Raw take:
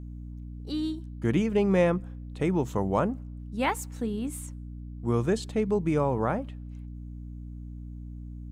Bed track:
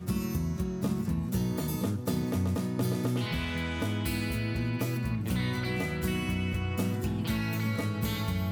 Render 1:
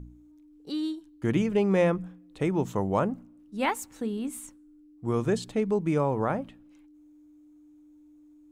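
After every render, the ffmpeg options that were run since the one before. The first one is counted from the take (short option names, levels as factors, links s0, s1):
-af "bandreject=f=60:t=h:w=4,bandreject=f=120:t=h:w=4,bandreject=f=180:t=h:w=4,bandreject=f=240:t=h:w=4"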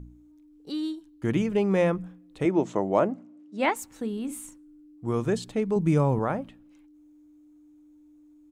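-filter_complex "[0:a]asettb=1/sr,asplit=3[s0][s1][s2];[s0]atrim=end=2.454[s3];[s1]atrim=start=2.45:end=3.76,asetpts=PTS-STARTPTS,afade=t=in:d=0.004:c=qsin,afade=t=out:st=1.306:d=0.004:c=qsin,highpass=180,equalizer=f=330:t=q:w=4:g=7,equalizer=f=630:t=q:w=4:g=8,equalizer=f=2100:t=q:w=4:g=4,lowpass=f=8200:w=0.5412,lowpass=f=8200:w=1.3066[s4];[s2]atrim=start=3.756[s5];[s3][s4]acrossfade=d=0.004:c1=hsin:c2=qsin[s6];[s6][s5]acrossfade=d=0.004:c1=qsin:c2=hsin,asplit=3[s7][s8][s9];[s7]afade=t=out:st=4.28:d=0.02[s10];[s8]asplit=2[s11][s12];[s12]adelay=43,volume=0.447[s13];[s11][s13]amix=inputs=2:normalize=0,afade=t=in:st=4.28:d=0.02,afade=t=out:st=5.06:d=0.02[s14];[s9]afade=t=in:st=5.06:d=0.02[s15];[s10][s14][s15]amix=inputs=3:normalize=0,asettb=1/sr,asplit=3[s16][s17][s18];[s16]atrim=end=5.764[s19];[s17]atrim=start=5.76:end=6.19,asetpts=PTS-STARTPTS,afade=t=in:d=0.004:c=qsin,afade=t=out:st=0.426:d=0.004:c=qsin,bass=f=250:g=8,treble=f=4000:g=5[s20];[s18]atrim=start=6.186[s21];[s19][s20]acrossfade=d=0.004:c1=hsin:c2=qsin[s22];[s22][s21]acrossfade=d=0.004:c1=qsin:c2=hsin"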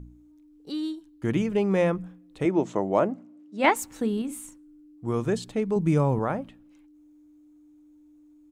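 -filter_complex "[0:a]asettb=1/sr,asplit=3[s0][s1][s2];[s0]atrim=end=3.644[s3];[s1]atrim=start=3.64:end=4.22,asetpts=PTS-STARTPTS,afade=t=in:d=0.004:c=qsin,afade=t=out:st=0.576:d=0.004:c=qsin,acontrast=21[s4];[s2]atrim=start=4.216[s5];[s3][s4]acrossfade=d=0.004:c1=hsin:c2=qsin[s6];[s6][s5]acrossfade=d=0.004:c1=qsin:c2=hsin"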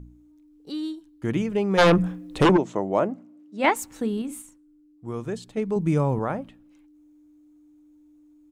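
-filter_complex "[0:a]asplit=3[s0][s1][s2];[s0]afade=t=out:st=1.77:d=0.02[s3];[s1]aeval=exprs='0.251*sin(PI/2*3.16*val(0)/0.251)':c=same,afade=t=in:st=1.77:d=0.02,afade=t=out:st=2.56:d=0.02[s4];[s2]afade=t=in:st=2.56:d=0.02[s5];[s3][s4][s5]amix=inputs=3:normalize=0,asplit=3[s6][s7][s8];[s6]atrim=end=4.422[s9];[s7]atrim=start=4.418:end=5.572,asetpts=PTS-STARTPTS,volume=0.562[s10];[s8]atrim=start=5.568[s11];[s9][s10]acrossfade=d=0.004:c1=hsin:c2=hsin[s12];[s12][s11]acrossfade=d=0.004:c1=hsin:c2=hsin"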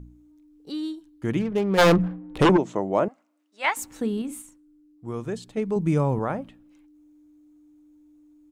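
-filter_complex "[0:a]asettb=1/sr,asplit=3[s0][s1][s2];[s0]atrim=end=1.394[s3];[s1]atrim=start=1.39:end=2.39,asetpts=PTS-STARTPTS,afade=t=in:d=0.004:c=qsin,afade=t=out:st=0.996:d=0.004:c=qsin,adynamicsmooth=sensitivity=7:basefreq=530[s4];[s2]atrim=start=2.386[s5];[s3][s4]acrossfade=d=0.004:c1=hsin:c2=qsin[s6];[s6][s5]acrossfade=d=0.004:c1=qsin:c2=hsin,asettb=1/sr,asplit=3[s7][s8][s9];[s7]atrim=end=3.084[s10];[s8]atrim=start=3.08:end=3.77,asetpts=PTS-STARTPTS,afade=t=in:d=0.004:c=qsin,afade=t=out:st=0.686:d=0.004:c=qsin,highpass=1000[s11];[s9]atrim=start=3.766[s12];[s10][s11]acrossfade=d=0.004:c1=hsin:c2=qsin[s13];[s13][s12]acrossfade=d=0.004:c1=qsin:c2=hsin"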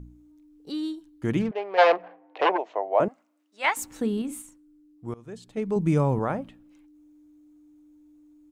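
-filter_complex "[0:a]asettb=1/sr,asplit=3[s0][s1][s2];[s0]atrim=end=1.514[s3];[s1]atrim=start=1.51:end=3,asetpts=PTS-STARTPTS,afade=t=in:d=0.004:c=qsin,afade=t=out:st=1.486:d=0.004:c=qsin,highpass=f=500:w=0.5412,highpass=f=500:w=1.3066,equalizer=f=710:t=q:w=4:g=7,equalizer=f=1300:t=q:w=4:g=-6,equalizer=f=3500:t=q:w=4:g=-7,lowpass=f=3900:w=0.5412,lowpass=f=3900:w=1.3066[s4];[s2]atrim=start=2.996[s5];[s3][s4]acrossfade=d=0.004:c1=hsin:c2=qsin[s6];[s6][s5]acrossfade=d=0.004:c1=qsin:c2=hsin,asplit=2[s7][s8];[s7]atrim=end=5.14,asetpts=PTS-STARTPTS,afade=t=out:st=5.136:d=0.004:c=hsin:silence=0.0794328[s9];[s8]atrim=start=5.14,asetpts=PTS-STARTPTS,afade=t=in:d=0.64:silence=0.0794328[s10];[s9][s10]concat=n=2:v=0:a=1"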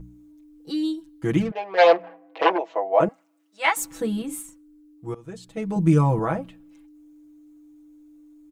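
-af "highshelf=f=8600:g=4.5,aecho=1:1:6.1:0.97"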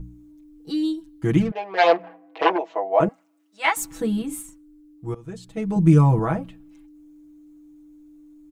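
-af "lowshelf=f=170:g=7.5,bandreject=f=530:w=12"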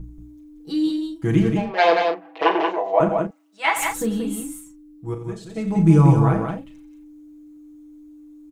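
-filter_complex "[0:a]asplit=2[s0][s1];[s1]adelay=36,volume=0.398[s2];[s0][s2]amix=inputs=2:normalize=0,aecho=1:1:87.46|180.8:0.282|0.562"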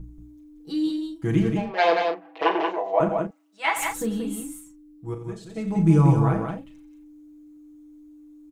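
-af "volume=0.668"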